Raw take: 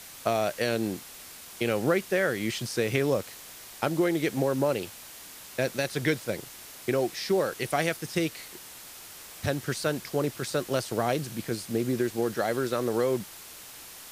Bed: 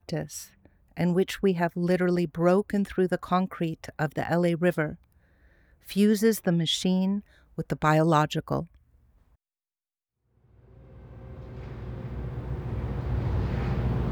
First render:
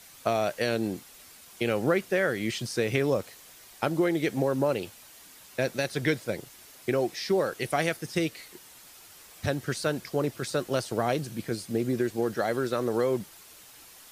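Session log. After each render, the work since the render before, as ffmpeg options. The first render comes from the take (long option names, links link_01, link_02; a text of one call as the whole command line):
ffmpeg -i in.wav -af "afftdn=noise_reduction=7:noise_floor=-46" out.wav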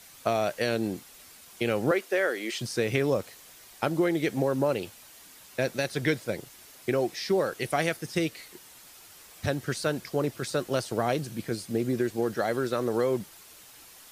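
ffmpeg -i in.wav -filter_complex "[0:a]asettb=1/sr,asplit=3[link_01][link_02][link_03];[link_01]atrim=end=1.914[link_04];[link_02]atrim=start=1.91:end=2.61,asetpts=PTS-STARTPTS,afade=type=in:duration=0.004:curve=qsin,afade=type=out:start_time=0.696:duration=0.004:curve=qsin,highpass=frequency=300:width=0.5412,highpass=frequency=300:width=1.3066[link_05];[link_03]atrim=start=2.606[link_06];[link_04][link_05]acrossfade=duration=0.004:curve1=hsin:curve2=qsin[link_07];[link_07][link_06]acrossfade=duration=0.004:curve1=qsin:curve2=hsin" out.wav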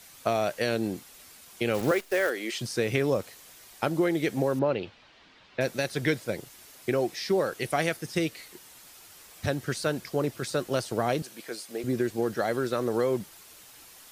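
ffmpeg -i in.wav -filter_complex "[0:a]asplit=3[link_01][link_02][link_03];[link_01]afade=type=out:start_time=1.73:duration=0.02[link_04];[link_02]acrusher=bits=7:dc=4:mix=0:aa=0.000001,afade=type=in:start_time=1.73:duration=0.02,afade=type=out:start_time=2.29:duration=0.02[link_05];[link_03]afade=type=in:start_time=2.29:duration=0.02[link_06];[link_04][link_05][link_06]amix=inputs=3:normalize=0,asettb=1/sr,asplit=3[link_07][link_08][link_09];[link_07]atrim=end=4.594[link_10];[link_08]atrim=start=4.59:end=5.61,asetpts=PTS-STARTPTS,afade=type=in:duration=0.004:curve=qsin,afade=type=out:start_time=1.016:duration=0.004:curve=qsin,lowpass=frequency=4000:width=0.5412,lowpass=frequency=4000:width=1.3066[link_11];[link_09]atrim=start=5.606[link_12];[link_10][link_11]acrossfade=duration=0.004:curve1=hsin:curve2=qsin[link_13];[link_13][link_12]acrossfade=duration=0.004:curve1=qsin:curve2=hsin,asettb=1/sr,asplit=3[link_14][link_15][link_16];[link_14]atrim=end=11.224[link_17];[link_15]atrim=start=11.22:end=11.84,asetpts=PTS-STARTPTS,afade=type=in:duration=0.004:curve=qsin,afade=type=out:start_time=0.616:duration=0.004:curve=qsin,highpass=490[link_18];[link_16]atrim=start=11.836[link_19];[link_17][link_18]acrossfade=duration=0.004:curve1=hsin:curve2=qsin[link_20];[link_20][link_19]acrossfade=duration=0.004:curve1=qsin:curve2=hsin" out.wav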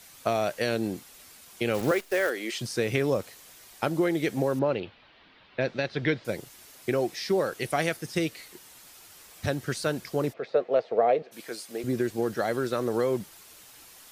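ffmpeg -i in.wav -filter_complex "[0:a]asettb=1/sr,asplit=3[link_01][link_02][link_03];[link_01]atrim=end=4.804[link_04];[link_02]atrim=start=4.8:end=6.25,asetpts=PTS-STARTPTS,afade=type=in:duration=0.004:curve=qsin,afade=type=out:start_time=1.446:duration=0.004:curve=qsin,lowpass=frequency=4300:width=0.5412,lowpass=frequency=4300:width=1.3066[link_05];[link_03]atrim=start=6.246[link_06];[link_04][link_05]acrossfade=duration=0.004:curve1=hsin:curve2=qsin[link_07];[link_07][link_06]acrossfade=duration=0.004:curve1=qsin:curve2=hsin,asplit=3[link_08][link_09][link_10];[link_08]afade=type=out:start_time=10.32:duration=0.02[link_11];[link_09]highpass=320,equalizer=frequency=320:width_type=q:width=4:gain=-7,equalizer=frequency=470:width_type=q:width=4:gain=10,equalizer=frequency=680:width_type=q:width=4:gain=8,equalizer=frequency=990:width_type=q:width=4:gain=-4,equalizer=frequency=1500:width_type=q:width=4:gain=-7,equalizer=frequency=3000:width_type=q:width=4:gain=-7,lowpass=frequency=3000:width=0.5412,lowpass=frequency=3000:width=1.3066,afade=type=in:start_time=10.32:duration=0.02,afade=type=out:start_time=11.31:duration=0.02[link_12];[link_10]afade=type=in:start_time=11.31:duration=0.02[link_13];[link_11][link_12][link_13]amix=inputs=3:normalize=0" out.wav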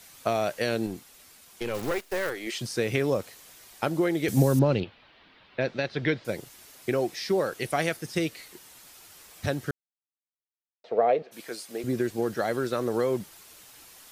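ffmpeg -i in.wav -filter_complex "[0:a]asettb=1/sr,asplit=3[link_01][link_02][link_03];[link_01]atrim=end=0.864[link_04];[link_02]atrim=start=0.86:end=2.47,asetpts=PTS-STARTPTS,afade=type=in:duration=0.004:curve=qsin,afade=type=out:start_time=1.606:duration=0.004:curve=qsin,aeval=exprs='(tanh(12.6*val(0)+0.55)-tanh(0.55))/12.6':channel_layout=same[link_05];[link_03]atrim=start=2.466[link_06];[link_04][link_05]acrossfade=duration=0.004:curve1=hsin:curve2=qsin[link_07];[link_07][link_06]acrossfade=duration=0.004:curve1=qsin:curve2=hsin,asettb=1/sr,asplit=3[link_08][link_09][link_10];[link_08]atrim=end=4.284[link_11];[link_09]atrim=start=4.28:end=4.84,asetpts=PTS-STARTPTS,afade=type=in:duration=0.004:curve=qsin,afade=type=out:start_time=0.556:duration=0.004:curve=qsin,bass=frequency=250:gain=13,treble=frequency=4000:gain=13[link_12];[link_10]atrim=start=4.836[link_13];[link_11][link_12]acrossfade=duration=0.004:curve1=hsin:curve2=qsin[link_14];[link_14][link_13]acrossfade=duration=0.004:curve1=qsin:curve2=hsin,asplit=3[link_15][link_16][link_17];[link_15]atrim=end=9.71,asetpts=PTS-STARTPTS,afade=type=out:start_time=9.706:duration=0.004:curve=hsin[link_18];[link_16]atrim=start=9.71:end=10.84,asetpts=PTS-STARTPTS,volume=0[link_19];[link_17]atrim=start=10.84,asetpts=PTS-STARTPTS,afade=type=in:duration=0.004:curve=hsin[link_20];[link_18][link_19][link_20]concat=n=3:v=0:a=1" out.wav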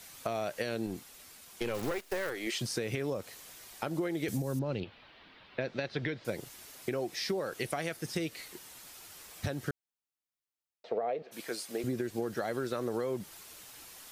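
ffmpeg -i in.wav -af "alimiter=limit=-17dB:level=0:latency=1:release=206,acompressor=threshold=-30dB:ratio=6" out.wav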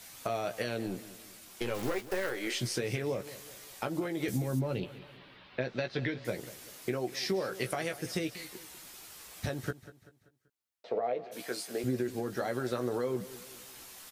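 ffmpeg -i in.wav -filter_complex "[0:a]asplit=2[link_01][link_02];[link_02]adelay=16,volume=-7dB[link_03];[link_01][link_03]amix=inputs=2:normalize=0,aecho=1:1:193|386|579|772:0.158|0.0697|0.0307|0.0135" out.wav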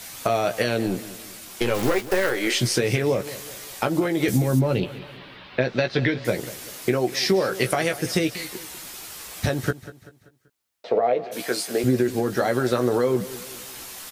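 ffmpeg -i in.wav -af "volume=11.5dB" out.wav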